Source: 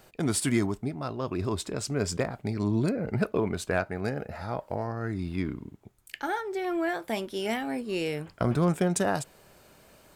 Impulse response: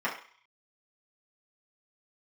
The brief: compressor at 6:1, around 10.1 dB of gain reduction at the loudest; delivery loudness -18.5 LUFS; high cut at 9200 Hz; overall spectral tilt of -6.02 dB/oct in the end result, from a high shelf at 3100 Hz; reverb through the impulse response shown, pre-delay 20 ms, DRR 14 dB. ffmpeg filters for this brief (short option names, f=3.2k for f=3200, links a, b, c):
-filter_complex "[0:a]lowpass=9.2k,highshelf=f=3.1k:g=-6,acompressor=threshold=-32dB:ratio=6,asplit=2[a][b];[1:a]atrim=start_sample=2205,adelay=20[c];[b][c]afir=irnorm=-1:irlink=0,volume=-24dB[d];[a][d]amix=inputs=2:normalize=0,volume=18.5dB"